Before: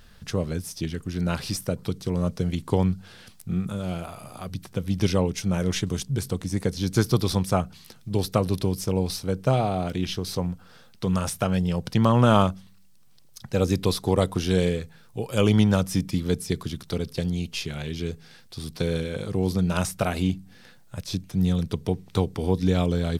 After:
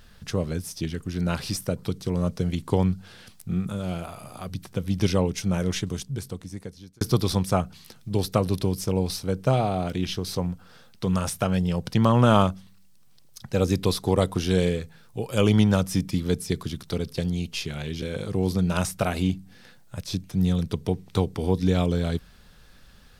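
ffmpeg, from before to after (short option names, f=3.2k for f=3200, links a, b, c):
-filter_complex "[0:a]asplit=3[a][b][c];[a]atrim=end=7.01,asetpts=PTS-STARTPTS,afade=t=out:st=5.53:d=1.48[d];[b]atrim=start=7.01:end=18.022,asetpts=PTS-STARTPTS,afade=t=in:d=0.004:c=hsin[e];[c]atrim=start=19.018[f];[d][e]concat=n=2:v=0:a=1[g];[g][f]acrossfade=d=0.004:c1=hsin:c2=hsin"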